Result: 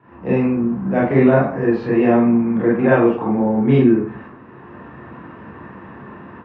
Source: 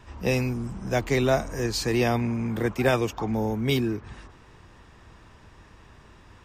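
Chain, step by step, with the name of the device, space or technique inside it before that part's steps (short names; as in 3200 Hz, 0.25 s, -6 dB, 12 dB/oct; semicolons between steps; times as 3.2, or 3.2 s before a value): Bessel low-pass 1400 Hz, order 4; far laptop microphone (reverb RT60 0.45 s, pre-delay 26 ms, DRR -7 dB; HPF 120 Hz 24 dB/oct; AGC gain up to 11 dB); gain -1 dB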